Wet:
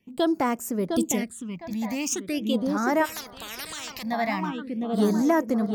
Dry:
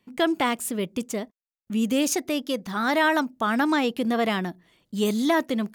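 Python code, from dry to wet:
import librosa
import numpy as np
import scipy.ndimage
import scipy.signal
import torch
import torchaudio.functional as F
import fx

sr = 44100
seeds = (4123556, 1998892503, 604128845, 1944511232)

y = fx.echo_filtered(x, sr, ms=708, feedback_pct=46, hz=2000.0, wet_db=-5.0)
y = fx.phaser_stages(y, sr, stages=8, low_hz=390.0, high_hz=3600.0, hz=0.42, feedback_pct=25)
y = fx.bass_treble(y, sr, bass_db=5, treble_db=11, at=(0.91, 1.74))
y = fx.spectral_comp(y, sr, ratio=10.0, at=(3.04, 4.02), fade=0.02)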